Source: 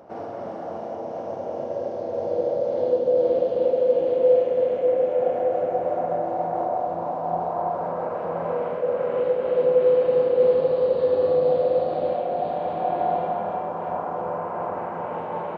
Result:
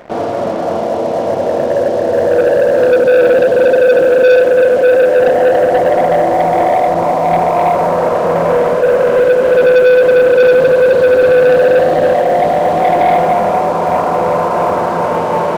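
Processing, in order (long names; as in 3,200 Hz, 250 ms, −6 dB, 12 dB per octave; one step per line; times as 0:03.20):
notch filter 810 Hz, Q 12
leveller curve on the samples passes 3
level +5.5 dB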